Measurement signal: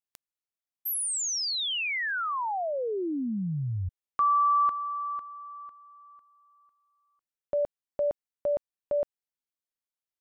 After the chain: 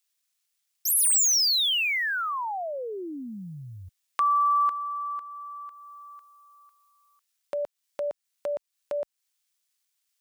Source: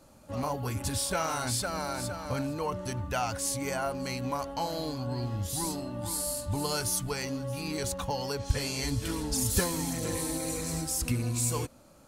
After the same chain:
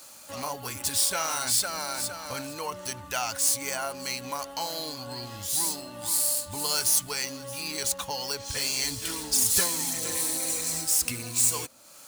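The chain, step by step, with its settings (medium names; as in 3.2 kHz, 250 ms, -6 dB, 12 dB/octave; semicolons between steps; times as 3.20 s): median filter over 3 samples; tilt EQ +3.5 dB/octave; tape noise reduction on one side only encoder only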